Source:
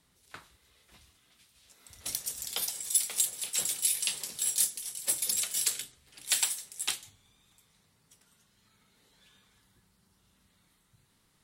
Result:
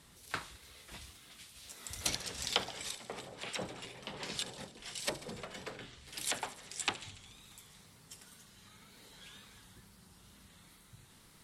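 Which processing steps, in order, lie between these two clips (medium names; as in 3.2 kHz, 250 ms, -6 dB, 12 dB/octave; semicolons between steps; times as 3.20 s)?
low-pass that closes with the level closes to 870 Hz, closed at -28 dBFS; wow and flutter 81 cents; on a send: feedback echo behind a high-pass 72 ms, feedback 73%, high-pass 3.2 kHz, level -14 dB; on the sum: trim +9 dB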